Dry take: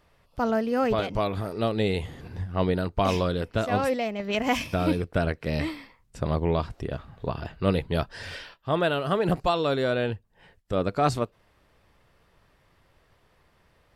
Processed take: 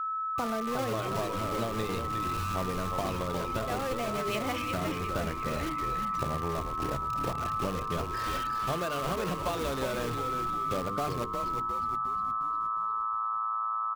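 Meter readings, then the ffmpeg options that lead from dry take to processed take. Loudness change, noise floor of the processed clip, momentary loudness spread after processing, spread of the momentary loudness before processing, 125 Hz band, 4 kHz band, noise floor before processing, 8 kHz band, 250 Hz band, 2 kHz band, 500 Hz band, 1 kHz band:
−4.5 dB, −34 dBFS, 2 LU, 10 LU, −6.5 dB, −4.5 dB, −64 dBFS, +3.5 dB, −7.0 dB, −5.0 dB, −7.5 dB, +1.5 dB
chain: -filter_complex "[0:a]highpass=frequency=70:width=0.5412,highpass=frequency=70:width=1.3066,bandreject=frequency=50:width_type=h:width=6,bandreject=frequency=100:width_type=h:width=6,bandreject=frequency=150:width_type=h:width=6,bandreject=frequency=200:width_type=h:width=6,bandreject=frequency=250:width_type=h:width=6,bandreject=frequency=300:width_type=h:width=6,bandreject=frequency=350:width_type=h:width=6,bandreject=frequency=400:width_type=h:width=6,bandreject=frequency=450:width_type=h:width=6,bandreject=frequency=500:width_type=h:width=6,aeval=exprs='val(0)+0.0251*sin(2*PI*1300*n/s)':channel_layout=same,acompressor=threshold=-29dB:ratio=10,aresample=16000,aeval=exprs='sgn(val(0))*max(abs(val(0))-0.00266,0)':channel_layout=same,aresample=44100,afftfilt=real='re*gte(hypot(re,im),0.0112)':imag='im*gte(hypot(re,im),0.0112)':win_size=1024:overlap=0.75,asplit=2[link_01][link_02];[link_02]aeval=exprs='(mod(35.5*val(0)+1,2)-1)/35.5':channel_layout=same,volume=-6.5dB[link_03];[link_01][link_03]amix=inputs=2:normalize=0,asplit=7[link_04][link_05][link_06][link_07][link_08][link_09][link_10];[link_05]adelay=357,afreqshift=-110,volume=-5dB[link_11];[link_06]adelay=714,afreqshift=-220,volume=-10.8dB[link_12];[link_07]adelay=1071,afreqshift=-330,volume=-16.7dB[link_13];[link_08]adelay=1428,afreqshift=-440,volume=-22.5dB[link_14];[link_09]adelay=1785,afreqshift=-550,volume=-28.4dB[link_15];[link_10]adelay=2142,afreqshift=-660,volume=-34.2dB[link_16];[link_04][link_11][link_12][link_13][link_14][link_15][link_16]amix=inputs=7:normalize=0"

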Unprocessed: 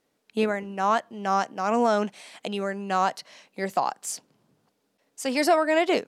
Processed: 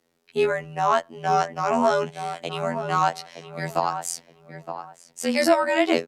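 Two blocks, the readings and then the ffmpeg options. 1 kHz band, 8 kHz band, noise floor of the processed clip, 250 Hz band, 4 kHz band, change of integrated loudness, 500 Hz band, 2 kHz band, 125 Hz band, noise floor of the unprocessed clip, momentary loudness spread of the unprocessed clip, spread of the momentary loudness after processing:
+2.0 dB, +2.0 dB, −64 dBFS, +0.5 dB, +2.0 dB, +2.0 dB, +2.0 dB, +2.0 dB, +5.5 dB, −74 dBFS, 12 LU, 17 LU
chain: -filter_complex "[0:a]asplit=2[link_01][link_02];[link_02]adelay=918,lowpass=frequency=1700:poles=1,volume=-9dB,asplit=2[link_03][link_04];[link_04]adelay=918,lowpass=frequency=1700:poles=1,volume=0.23,asplit=2[link_05][link_06];[link_06]adelay=918,lowpass=frequency=1700:poles=1,volume=0.23[link_07];[link_01][link_03][link_05][link_07]amix=inputs=4:normalize=0,afftfilt=real='hypot(re,im)*cos(PI*b)':imag='0':win_size=2048:overlap=0.75,afreqshift=-18,volume=5.5dB"

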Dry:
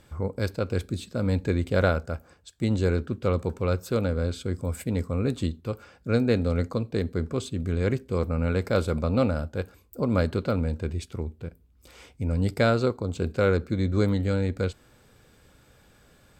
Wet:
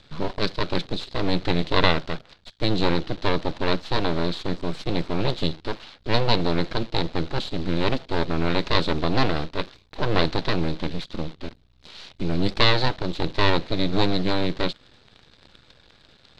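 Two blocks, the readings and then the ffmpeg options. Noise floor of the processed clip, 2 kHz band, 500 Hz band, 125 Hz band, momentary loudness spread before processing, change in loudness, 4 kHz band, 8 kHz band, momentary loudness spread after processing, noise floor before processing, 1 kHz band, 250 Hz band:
−57 dBFS, +6.0 dB, 0.0 dB, −2.0 dB, 10 LU, +2.0 dB, +15.0 dB, −2.5 dB, 12 LU, −59 dBFS, +8.5 dB, +1.0 dB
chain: -af "acrusher=bits=9:dc=4:mix=0:aa=0.000001,aeval=exprs='abs(val(0))':channel_layout=same,lowpass=frequency=4000:width_type=q:width=3.9,volume=4.5dB"

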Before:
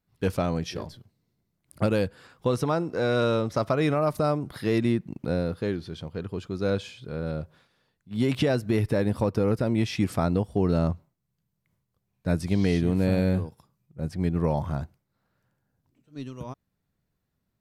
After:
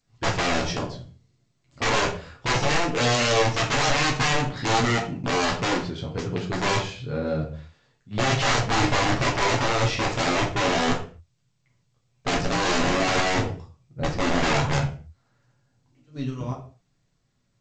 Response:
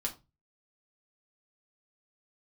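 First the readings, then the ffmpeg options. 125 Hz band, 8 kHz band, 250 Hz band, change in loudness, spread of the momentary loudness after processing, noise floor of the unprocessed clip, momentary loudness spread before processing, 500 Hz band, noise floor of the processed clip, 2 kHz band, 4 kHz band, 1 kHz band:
0.0 dB, +16.5 dB, −2.0 dB, +3.0 dB, 11 LU, −79 dBFS, 13 LU, +0.5 dB, −70 dBFS, +12.5 dB, +13.5 dB, +10.0 dB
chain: -filter_complex "[0:a]aeval=exprs='(mod(12.6*val(0)+1,2)-1)/12.6':channel_layout=same[link_01];[1:a]atrim=start_sample=2205,afade=type=out:start_time=0.21:duration=0.01,atrim=end_sample=9702,asetrate=25137,aresample=44100[link_02];[link_01][link_02]afir=irnorm=-1:irlink=0" -ar 16000 -c:a g722

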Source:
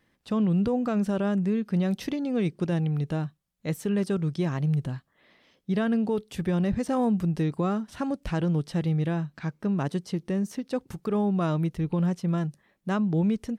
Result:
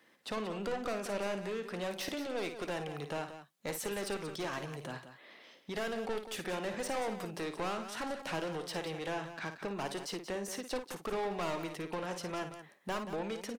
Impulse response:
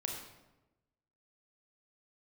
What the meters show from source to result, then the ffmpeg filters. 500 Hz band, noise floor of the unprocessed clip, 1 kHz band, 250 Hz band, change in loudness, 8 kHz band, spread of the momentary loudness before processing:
−6.0 dB, −71 dBFS, −3.5 dB, −16.5 dB, −11.0 dB, +3.0 dB, 7 LU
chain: -filter_complex "[0:a]highpass=330,acrossover=split=440[link_01][link_02];[link_01]acompressor=threshold=-47dB:ratio=6[link_03];[link_02]asoftclip=type=tanh:threshold=-34dB[link_04];[link_03][link_04]amix=inputs=2:normalize=0,aeval=exprs='0.0299*(cos(1*acos(clip(val(0)/0.0299,-1,1)))-cos(1*PI/2))+0.0119*(cos(2*acos(clip(val(0)/0.0299,-1,1)))-cos(2*PI/2))+0.00299*(cos(4*acos(clip(val(0)/0.0299,-1,1)))-cos(4*PI/2))+0.00422*(cos(5*acos(clip(val(0)/0.0299,-1,1)))-cos(5*PI/2))':channel_layout=same,aecho=1:1:55.39|180.8:0.355|0.282"

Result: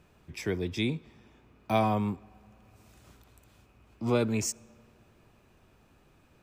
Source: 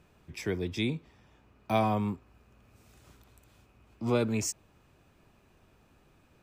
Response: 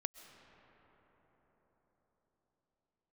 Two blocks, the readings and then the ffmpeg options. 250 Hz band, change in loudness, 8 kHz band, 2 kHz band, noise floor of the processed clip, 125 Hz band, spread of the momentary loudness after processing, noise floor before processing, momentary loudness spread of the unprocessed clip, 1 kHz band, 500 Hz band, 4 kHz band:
+1.0 dB, +1.0 dB, +1.0 dB, +1.0 dB, −63 dBFS, +1.0 dB, 14 LU, −64 dBFS, 14 LU, +1.0 dB, +1.0 dB, +1.0 dB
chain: -filter_complex "[0:a]asplit=2[link_01][link_02];[1:a]atrim=start_sample=2205,asetrate=83790,aresample=44100[link_03];[link_02][link_03]afir=irnorm=-1:irlink=0,volume=-11dB[link_04];[link_01][link_04]amix=inputs=2:normalize=0"

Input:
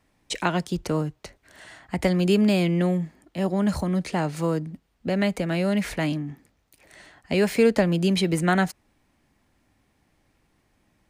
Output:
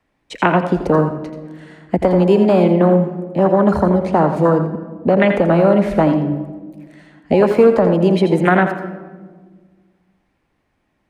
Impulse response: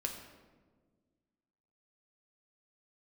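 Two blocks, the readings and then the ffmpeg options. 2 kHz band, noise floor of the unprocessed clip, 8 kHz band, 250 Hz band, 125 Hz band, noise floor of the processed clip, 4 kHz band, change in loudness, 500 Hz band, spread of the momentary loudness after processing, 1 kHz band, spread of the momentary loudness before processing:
+6.5 dB, −68 dBFS, can't be measured, +8.0 dB, +7.5 dB, −67 dBFS, −2.0 dB, +9.5 dB, +12.0 dB, 13 LU, +12.5 dB, 11 LU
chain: -filter_complex "[0:a]afwtdn=0.0398,bass=frequency=250:gain=-4,treble=frequency=4000:gain=-10,acrossover=split=260|600[link_01][link_02][link_03];[link_01]acompressor=threshold=-38dB:ratio=4[link_04];[link_02]acompressor=threshold=-34dB:ratio=4[link_05];[link_03]acompressor=threshold=-31dB:ratio=4[link_06];[link_04][link_05][link_06]amix=inputs=3:normalize=0,asplit=2[link_07][link_08];[1:a]atrim=start_sample=2205,adelay=83[link_09];[link_08][link_09]afir=irnorm=-1:irlink=0,volume=-8dB[link_10];[link_07][link_10]amix=inputs=2:normalize=0,alimiter=level_in=18dB:limit=-1dB:release=50:level=0:latency=1,volume=-1dB"

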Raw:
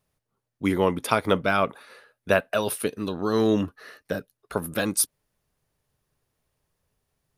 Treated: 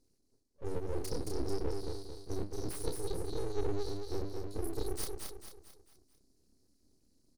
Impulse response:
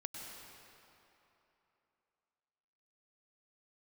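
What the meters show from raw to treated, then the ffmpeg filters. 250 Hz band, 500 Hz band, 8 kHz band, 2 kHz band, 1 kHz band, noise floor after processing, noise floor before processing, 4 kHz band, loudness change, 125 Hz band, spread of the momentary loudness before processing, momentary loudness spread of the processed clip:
−15.0 dB, −12.5 dB, −15.0 dB, −26.5 dB, −19.5 dB, −73 dBFS, −83 dBFS, −13.0 dB, −14.5 dB, −8.0 dB, 11 LU, 9 LU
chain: -filter_complex "[0:a]afftfilt=real='re*(1-between(b*sr/4096,280,4000))':imag='im*(1-between(b*sr/4096,280,4000))':win_size=4096:overlap=0.75,equalizer=frequency=3300:width=0.35:gain=-6,bandreject=frequency=50:width_type=h:width=6,bandreject=frequency=100:width_type=h:width=6,bandreject=frequency=150:width_type=h:width=6,bandreject=frequency=200:width_type=h:width=6,areverse,acompressor=threshold=-44dB:ratio=4,areverse,highpass=110,lowpass=6500,asplit=2[link_01][link_02];[link_02]adelay=30,volume=-3dB[link_03];[link_01][link_03]amix=inputs=2:normalize=0,aecho=1:1:222|444|666|888|1110:0.631|0.271|0.117|0.0502|0.0216,aeval=exprs='abs(val(0))':channel_layout=same,volume=11dB"

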